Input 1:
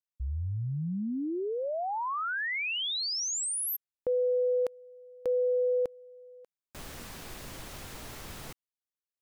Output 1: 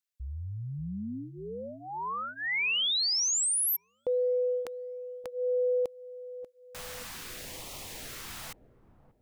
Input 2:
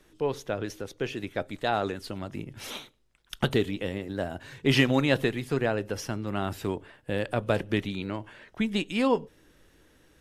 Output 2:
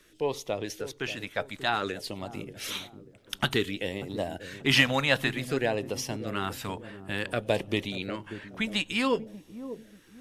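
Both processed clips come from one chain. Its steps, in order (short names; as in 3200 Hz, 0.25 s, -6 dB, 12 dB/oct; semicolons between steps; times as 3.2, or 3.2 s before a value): low shelf 460 Hz -9.5 dB; LFO notch sine 0.55 Hz 330–1600 Hz; dark delay 0.587 s, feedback 35%, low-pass 530 Hz, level -10 dB; gain +4.5 dB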